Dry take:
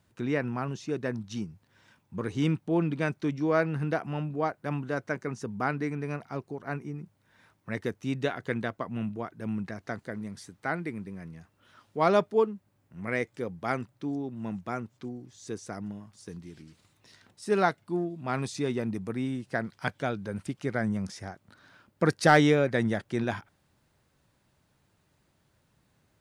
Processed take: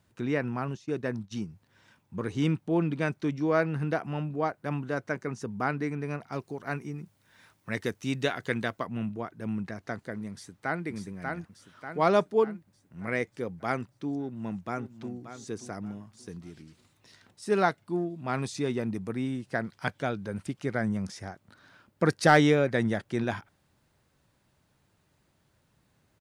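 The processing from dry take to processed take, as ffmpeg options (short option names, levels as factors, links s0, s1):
-filter_complex "[0:a]asettb=1/sr,asplit=3[s0][s1][s2];[s0]atrim=end=0.754[s3];[s1]atrim=start=0.75:end=1.33,asetpts=PTS-STARTPTS,afade=t=in:d=0.004:c=qsin,afade=t=out:st=0.576:d=0.004:c=qsin,agate=range=0.0224:threshold=0.01:ratio=3:release=100:detection=peak[s4];[s2]atrim=start=1.326[s5];[s3][s4]acrossfade=d=0.004:c1=hsin:c2=qsin[s6];[s6][s5]acrossfade=d=0.004:c1=qsin:c2=hsin,asettb=1/sr,asplit=3[s7][s8][s9];[s7]atrim=end=6.324[s10];[s8]atrim=start=6.32:end=8.87,asetpts=PTS-STARTPTS,afade=t=in:d=0.004:c=qsin,afade=t=out:st=2.546:d=0.004:c=qsin,highshelf=f=2200:g=8[s11];[s9]atrim=start=8.866[s12];[s10][s11]acrossfade=d=0.004:c1=hsin:c2=qsin[s13];[s13][s12]acrossfade=d=0.004:c1=qsin:c2=hsin,asplit=2[s14][s15];[s15]afade=t=in:st=10.31:d=0.01,afade=t=out:st=10.85:d=0.01,aecho=0:1:590|1180|1770|2360|2950|3540|4130:0.668344|0.334172|0.167086|0.083543|0.0417715|0.0208857|0.0104429[s16];[s14][s16]amix=inputs=2:normalize=0,asplit=2[s17][s18];[s18]afade=t=in:st=14.19:d=0.01,afade=t=out:st=15.13:d=0.01,aecho=0:1:580|1160|1740:0.281838|0.0845515|0.0253654[s19];[s17][s19]amix=inputs=2:normalize=0"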